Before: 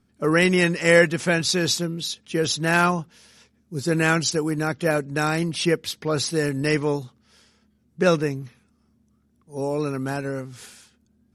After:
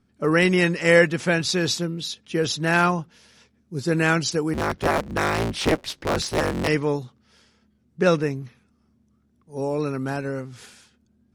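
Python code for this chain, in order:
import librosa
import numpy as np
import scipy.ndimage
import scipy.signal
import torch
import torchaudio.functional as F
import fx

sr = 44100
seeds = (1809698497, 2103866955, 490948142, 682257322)

y = fx.cycle_switch(x, sr, every=3, mode='inverted', at=(4.53, 6.67), fade=0.02)
y = fx.high_shelf(y, sr, hz=9400.0, db=-11.0)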